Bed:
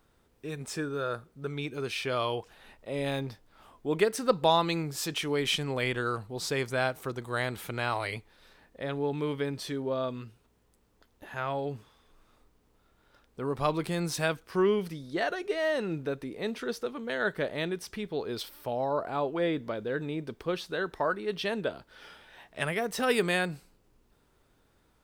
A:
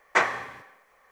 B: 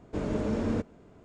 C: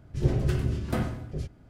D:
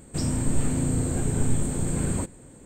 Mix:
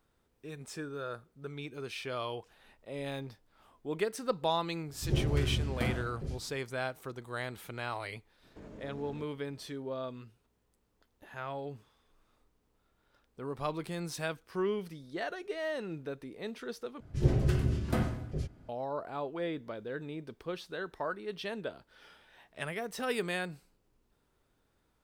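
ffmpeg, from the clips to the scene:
ffmpeg -i bed.wav -i cue0.wav -i cue1.wav -i cue2.wav -filter_complex "[3:a]asplit=2[link_01][link_02];[0:a]volume=-7dB[link_03];[link_01]asplit=2[link_04][link_05];[link_05]adelay=43,volume=-5dB[link_06];[link_04][link_06]amix=inputs=2:normalize=0[link_07];[2:a]alimiter=level_in=6dB:limit=-24dB:level=0:latency=1:release=104,volume=-6dB[link_08];[link_03]asplit=2[link_09][link_10];[link_09]atrim=end=17.004[link_11];[link_02]atrim=end=1.69,asetpts=PTS-STARTPTS,volume=-2dB[link_12];[link_10]atrim=start=18.686[link_13];[link_07]atrim=end=1.69,asetpts=PTS-STARTPTS,volume=-6dB,afade=type=in:duration=0.004:curve=hsin,afade=type=out:start_time=1.686:duration=0.004:curve=hsin,adelay=4880[link_14];[link_08]atrim=end=1.24,asetpts=PTS-STARTPTS,volume=-11dB,afade=type=in:duration=0.004:curve=hsin,afade=type=out:start_time=1.236:duration=0.004:curve=hsin,adelay=8430[link_15];[link_11][link_12]acrossfade=duration=0.004:curve1=hsin:curve2=hsin[link_16];[link_16][link_13]acrossfade=duration=0.004:curve1=hsin:curve2=hsin[link_17];[link_17][link_14][link_15]amix=inputs=3:normalize=0" out.wav

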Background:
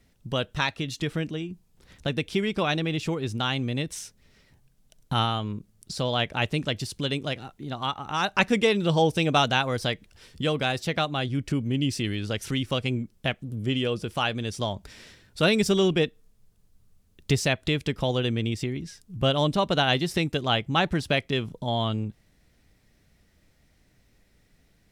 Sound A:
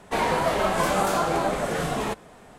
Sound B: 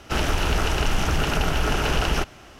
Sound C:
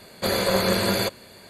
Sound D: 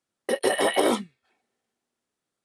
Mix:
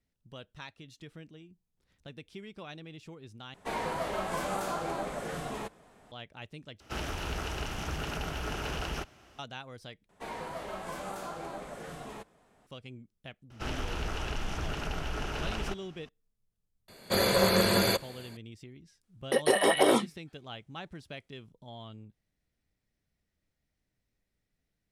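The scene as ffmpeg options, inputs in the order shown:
ffmpeg -i bed.wav -i cue0.wav -i cue1.wav -i cue2.wav -i cue3.wav -filter_complex "[1:a]asplit=2[link_01][link_02];[2:a]asplit=2[link_03][link_04];[0:a]volume=-19.5dB[link_05];[link_03]highpass=40[link_06];[link_04]highshelf=frequency=12000:gain=-10.5[link_07];[3:a]dynaudnorm=framelen=150:gausssize=3:maxgain=4.5dB[link_08];[link_05]asplit=4[link_09][link_10][link_11][link_12];[link_09]atrim=end=3.544[link_13];[link_01]atrim=end=2.58,asetpts=PTS-STARTPTS,volume=-10.5dB[link_14];[link_10]atrim=start=6.116:end=6.804[link_15];[link_06]atrim=end=2.59,asetpts=PTS-STARTPTS,volume=-12dB[link_16];[link_11]atrim=start=9.386:end=10.094[link_17];[link_02]atrim=end=2.58,asetpts=PTS-STARTPTS,volume=-16.5dB[link_18];[link_12]atrim=start=12.666[link_19];[link_07]atrim=end=2.59,asetpts=PTS-STARTPTS,volume=-12.5dB,afade=type=in:duration=0.004:curve=hsin,afade=type=out:start_time=2.586:duration=0.004:curve=hsin,adelay=13500[link_20];[link_08]atrim=end=1.49,asetpts=PTS-STARTPTS,volume=-6.5dB,afade=type=in:duration=0.004:curve=hsin,afade=type=out:start_time=1.486:duration=0.004:curve=hsin,adelay=16880[link_21];[4:a]atrim=end=2.44,asetpts=PTS-STARTPTS,volume=-1.5dB,afade=type=in:duration=0.004:curve=hsin,afade=type=out:start_time=2.436:duration=0.004:curve=hsin,adelay=19030[link_22];[link_13][link_14]acrossfade=duration=0.004:curve1=hsin:curve2=hsin[link_23];[link_23][link_15]acrossfade=duration=0.004:curve1=hsin:curve2=hsin[link_24];[link_24][link_16]acrossfade=duration=0.004:curve1=hsin:curve2=hsin[link_25];[link_25][link_17]acrossfade=duration=0.004:curve1=hsin:curve2=hsin[link_26];[link_26][link_18]acrossfade=duration=0.004:curve1=hsin:curve2=hsin[link_27];[link_27][link_19]acrossfade=duration=0.004:curve1=hsin:curve2=hsin[link_28];[link_28][link_20][link_21][link_22]amix=inputs=4:normalize=0" out.wav

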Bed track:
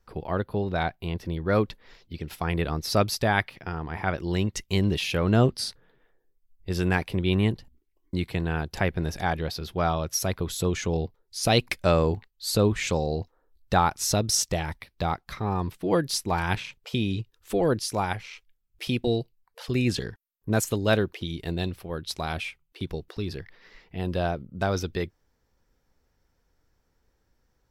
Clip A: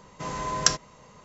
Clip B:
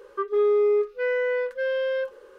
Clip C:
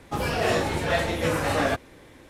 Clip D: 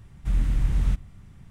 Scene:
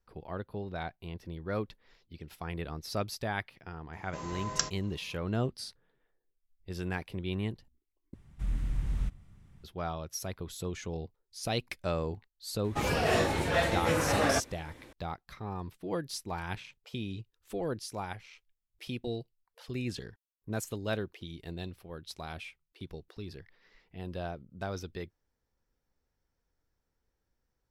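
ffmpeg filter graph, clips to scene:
ffmpeg -i bed.wav -i cue0.wav -i cue1.wav -i cue2.wav -i cue3.wav -filter_complex "[0:a]volume=-11dB,asplit=2[link_01][link_02];[link_01]atrim=end=8.144[link_03];[4:a]atrim=end=1.5,asetpts=PTS-STARTPTS,volume=-9dB[link_04];[link_02]atrim=start=9.636[link_05];[1:a]atrim=end=1.24,asetpts=PTS-STARTPTS,volume=-9dB,afade=type=in:duration=0.004:curve=hsin,afade=type=out:start_time=1.236:duration=0.004:curve=hsin,adelay=173313S[link_06];[3:a]atrim=end=2.29,asetpts=PTS-STARTPTS,volume=-3.5dB,afade=type=in:duration=0.004:curve=hsin,afade=type=out:start_time=2.286:duration=0.004:curve=hsin,adelay=12640[link_07];[link_03][link_04]acrossfade=duration=0.004:curve1=hsin:curve2=hsin[link_08];[link_08][link_05]acrossfade=duration=0.004:curve1=hsin:curve2=hsin[link_09];[link_09][link_06][link_07]amix=inputs=3:normalize=0" out.wav

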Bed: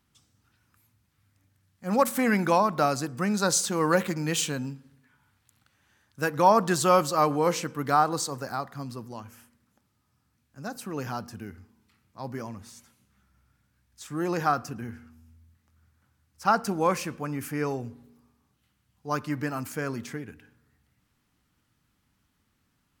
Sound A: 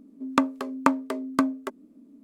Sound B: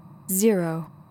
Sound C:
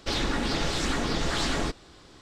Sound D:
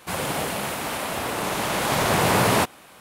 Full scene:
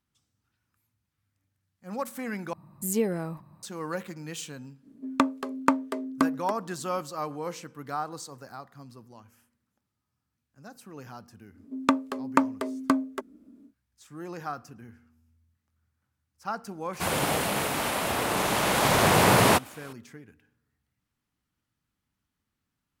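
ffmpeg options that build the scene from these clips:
ffmpeg -i bed.wav -i cue0.wav -i cue1.wav -i cue2.wav -i cue3.wav -filter_complex "[1:a]asplit=2[link_01][link_02];[0:a]volume=-10.5dB,asplit=2[link_03][link_04];[link_03]atrim=end=2.534[link_05];[2:a]atrim=end=1.1,asetpts=PTS-STARTPTS,volume=-6.5dB[link_06];[link_04]atrim=start=3.626[link_07];[link_01]atrim=end=2.23,asetpts=PTS-STARTPTS,volume=-1.5dB,afade=type=in:duration=0.05,afade=type=out:start_time=2.18:duration=0.05,adelay=4820[link_08];[link_02]atrim=end=2.23,asetpts=PTS-STARTPTS,volume=-1dB,afade=type=in:duration=0.1,afade=type=out:start_time=2.13:duration=0.1,adelay=11510[link_09];[4:a]atrim=end=3,asetpts=PTS-STARTPTS,afade=type=in:duration=0.004:curve=hsin,afade=type=out:start_time=2.996:duration=0.004:curve=hsin,adelay=16930[link_10];[link_05][link_06]acrossfade=duration=0.004:curve1=hsin:curve2=hsin[link_11];[link_11][link_07]acrossfade=duration=0.004:curve1=hsin:curve2=hsin[link_12];[link_12][link_08][link_09][link_10]amix=inputs=4:normalize=0" out.wav

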